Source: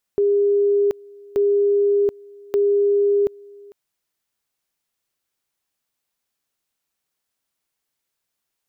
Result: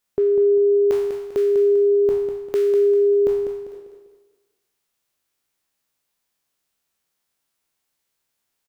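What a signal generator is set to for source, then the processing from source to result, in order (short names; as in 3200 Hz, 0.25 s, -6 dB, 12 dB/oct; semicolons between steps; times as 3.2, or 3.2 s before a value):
two-level tone 405 Hz -14 dBFS, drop 25.5 dB, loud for 0.73 s, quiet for 0.45 s, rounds 3
spectral trails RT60 0.90 s; on a send: feedback echo 0.198 s, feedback 36%, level -8 dB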